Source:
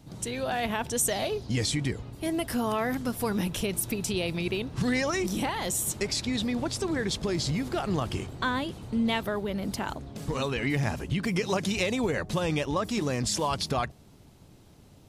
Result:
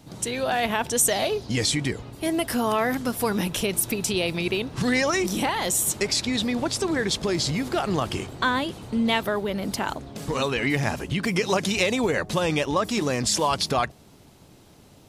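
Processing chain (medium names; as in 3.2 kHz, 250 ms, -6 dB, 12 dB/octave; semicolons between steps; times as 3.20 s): bass shelf 180 Hz -8 dB; trim +6 dB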